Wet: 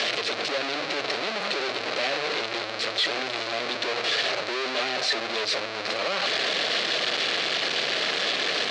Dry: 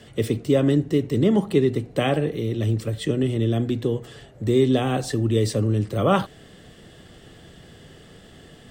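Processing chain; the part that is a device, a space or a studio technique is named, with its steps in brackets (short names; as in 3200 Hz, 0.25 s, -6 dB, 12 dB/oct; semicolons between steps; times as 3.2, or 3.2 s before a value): 4.49–5.44 comb 5 ms, depth 43%; home computer beeper (infinite clipping; speaker cabinet 600–5100 Hz, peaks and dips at 600 Hz +3 dB, 910 Hz -7 dB, 2400 Hz +4 dB, 4200 Hz +7 dB)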